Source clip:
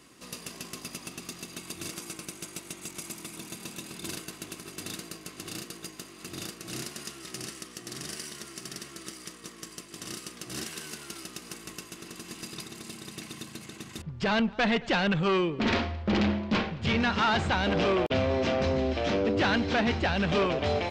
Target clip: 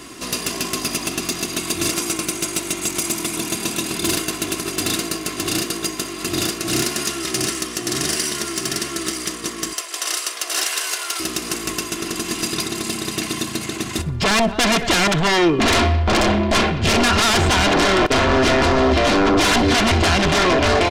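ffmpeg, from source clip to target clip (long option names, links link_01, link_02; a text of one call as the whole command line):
ffmpeg -i in.wav -filter_complex "[0:a]asettb=1/sr,asplit=3[link_01][link_02][link_03];[link_01]atrim=end=9.734[link_04];[link_02]atrim=start=9.73:end=11.2,asetpts=PTS-STARTPTS,afade=type=in:duration=0.004:curve=qsin,afade=type=out:start_time=1.466:duration=0.004:curve=qsin,highpass=frequency=530:width=0.5412,highpass=frequency=530:width=1.3066[link_05];[link_03]atrim=start=11.196[link_06];[link_04][link_05]acrossfade=duration=0.004:curve1=hsin:curve2=qsin[link_07];[link_07][link_06]acrossfade=duration=0.004:curve1=qsin:curve2=hsin,aeval=exprs='0.15*sin(PI/2*3.16*val(0)/0.15)':channel_layout=same,aecho=1:1:2.9:0.38,aecho=1:1:62|124|186:0.1|0.037|0.0137,volume=3.5dB" out.wav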